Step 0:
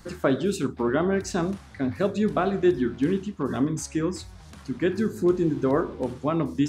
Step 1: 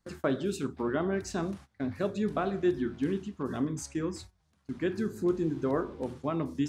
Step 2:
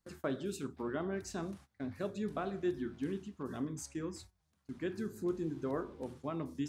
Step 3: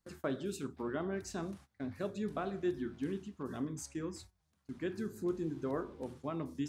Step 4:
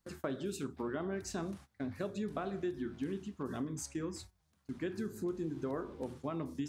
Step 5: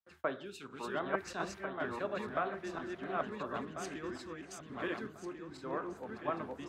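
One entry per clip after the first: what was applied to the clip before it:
gate -39 dBFS, range -20 dB; trim -6.5 dB
treble shelf 9.1 kHz +8 dB; trim -7.5 dB
no audible change
compression 4:1, threshold -37 dBFS, peak gain reduction 7.5 dB; trim +3 dB
backward echo that repeats 697 ms, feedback 57%, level -0.5 dB; three-band isolator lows -14 dB, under 580 Hz, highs -18 dB, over 3.4 kHz; three bands expanded up and down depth 100%; trim +5.5 dB

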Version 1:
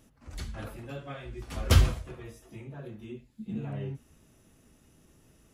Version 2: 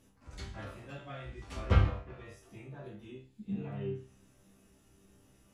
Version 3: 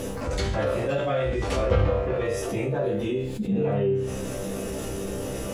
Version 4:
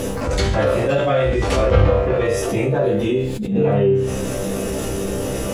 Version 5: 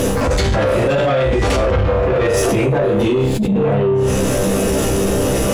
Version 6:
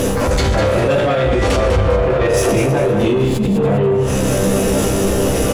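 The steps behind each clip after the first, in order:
low-pass that closes with the level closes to 1.9 kHz, closed at -26 dBFS; chord resonator C2 fifth, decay 0.39 s; trim +8.5 dB
peaking EQ 510 Hz +13.5 dB 0.67 oct; level flattener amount 70%
attacks held to a fixed rise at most 100 dB/s; trim +8 dB
in parallel at +3 dB: compressor with a negative ratio -21 dBFS, ratio -1; on the sum: saturation -10 dBFS, distortion -14 dB
feedback delay 200 ms, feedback 36%, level -8 dB

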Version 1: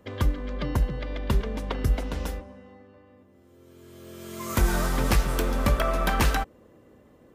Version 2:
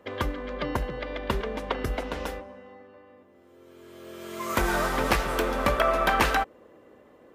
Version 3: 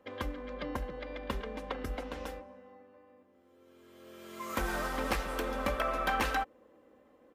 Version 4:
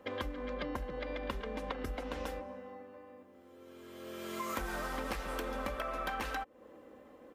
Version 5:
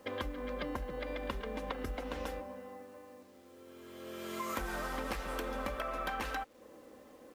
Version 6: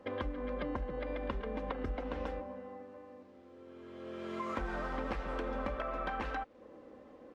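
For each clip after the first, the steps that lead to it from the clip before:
tone controls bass -13 dB, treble -8 dB; trim +4.5 dB
comb 3.8 ms, depth 39%; hard clipper -12 dBFS, distortion -34 dB; trim -9 dB
compression 6:1, threshold -42 dBFS, peak gain reduction 15 dB; trim +6.5 dB
bit crusher 11-bit
tape spacing loss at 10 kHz 26 dB; trim +2.5 dB

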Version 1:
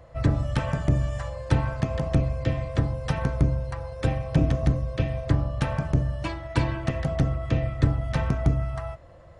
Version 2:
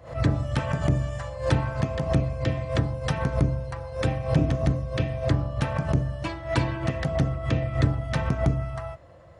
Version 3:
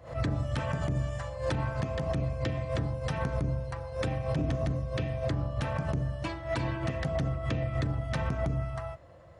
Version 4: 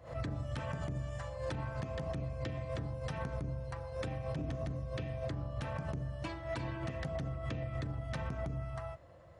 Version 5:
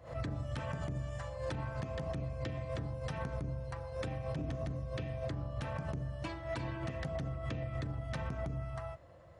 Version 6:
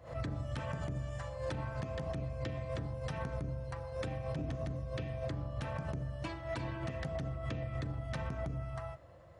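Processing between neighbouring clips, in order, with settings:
high-pass 72 Hz; swell ahead of each attack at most 130 dB/s
peak limiter -18 dBFS, peak gain reduction 9.5 dB; trim -3 dB
compression 2.5:1, threshold -32 dBFS, peak gain reduction 5 dB; trim -4 dB
no audible change
reverberation RT60 1.2 s, pre-delay 20 ms, DRR 19.5 dB

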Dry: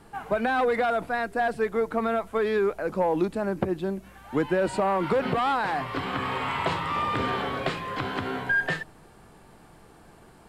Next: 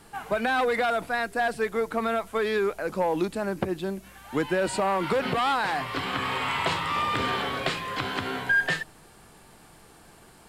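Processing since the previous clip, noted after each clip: treble shelf 2.1 kHz +10 dB; trim -2 dB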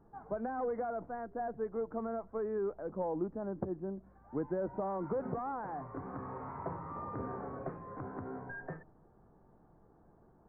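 Gaussian low-pass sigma 8.4 samples; trim -8 dB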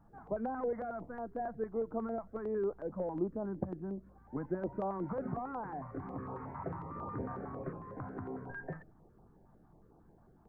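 step-sequenced notch 11 Hz 400–1900 Hz; trim +2 dB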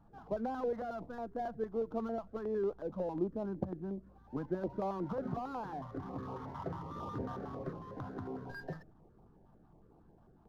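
median filter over 15 samples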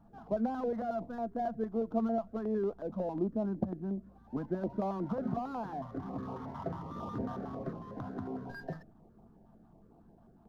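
small resonant body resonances 220/670 Hz, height 8 dB

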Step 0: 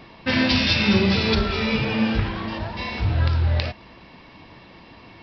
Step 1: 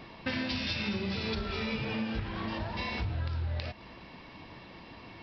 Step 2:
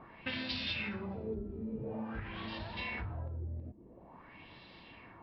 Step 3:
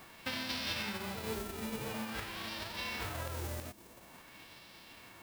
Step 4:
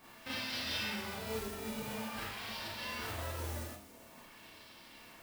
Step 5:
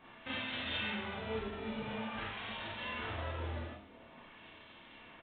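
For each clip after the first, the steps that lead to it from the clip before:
compression, threshold -28 dBFS, peak gain reduction 14 dB; trim -3 dB
LFO low-pass sine 0.48 Hz 300–4100 Hz; trim -7.5 dB
formants flattened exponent 0.3
Schroeder reverb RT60 0.45 s, combs from 26 ms, DRR -7.5 dB; trim -8.5 dB
resampled via 8 kHz; trim +1 dB

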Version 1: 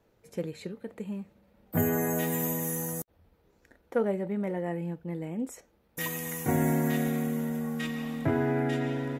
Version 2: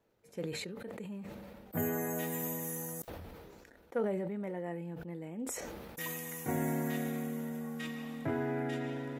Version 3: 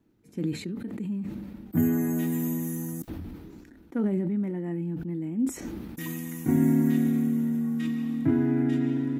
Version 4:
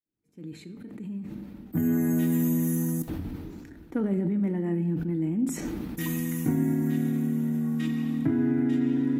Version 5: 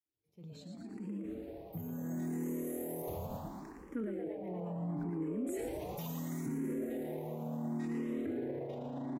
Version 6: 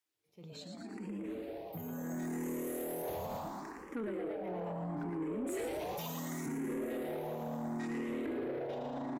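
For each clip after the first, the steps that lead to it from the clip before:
bass shelf 110 Hz -7.5 dB; decay stretcher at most 25 dB/s; trim -6.5 dB
resonant low shelf 390 Hz +9 dB, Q 3
fade-in on the opening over 2.79 s; compression, threshold -26 dBFS, peak gain reduction 8.5 dB; simulated room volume 1000 m³, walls mixed, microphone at 0.46 m; trim +3.5 dB
frequency-shifting echo 115 ms, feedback 61%, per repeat +120 Hz, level -6 dB; peak limiter -24 dBFS, peak gain reduction 11 dB; barber-pole phaser +0.72 Hz; trim -4.5 dB
overdrive pedal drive 16 dB, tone 6.5 kHz, clips at -28 dBFS; trim -1.5 dB

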